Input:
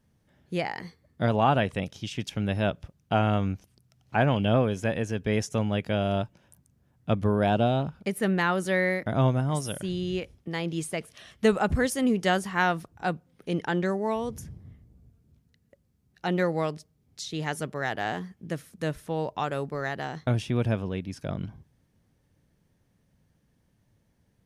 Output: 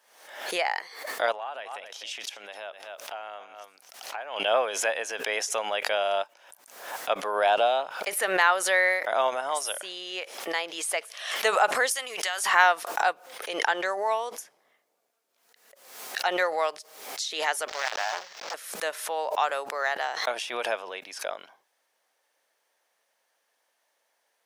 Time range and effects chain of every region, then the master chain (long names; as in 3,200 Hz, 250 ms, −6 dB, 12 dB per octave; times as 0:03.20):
0:01.32–0:04.40: single-tap delay 251 ms −17 dB + downward compressor 10 to 1, threshold −35 dBFS
0:11.91–0:12.46: tilt shelving filter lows −8 dB, about 870 Hz + downward compressor 8 to 1, threshold −30 dBFS
0:17.68–0:18.54: one scale factor per block 3 bits + high shelf with overshoot 7,700 Hz −12.5 dB, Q 3 + saturating transformer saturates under 1,900 Hz
whole clip: high-pass filter 610 Hz 24 dB per octave; background raised ahead of every attack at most 72 dB per second; level +5.5 dB